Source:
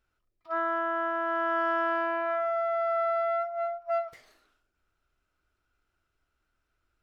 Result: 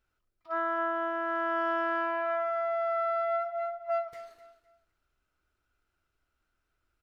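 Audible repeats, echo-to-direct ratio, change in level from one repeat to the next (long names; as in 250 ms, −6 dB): 2, −14.5 dB, −10.5 dB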